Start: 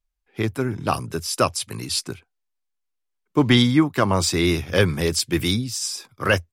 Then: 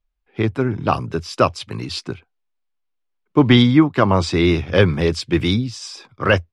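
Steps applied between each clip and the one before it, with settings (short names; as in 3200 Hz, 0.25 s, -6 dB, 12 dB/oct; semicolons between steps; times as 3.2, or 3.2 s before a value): LPF 3300 Hz 12 dB/oct; bell 1800 Hz -2.5 dB; gain +4.5 dB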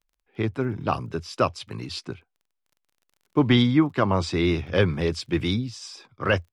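crackle 28/s -42 dBFS; gain -6.5 dB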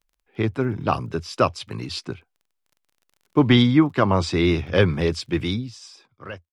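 ending faded out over 1.49 s; gain +3 dB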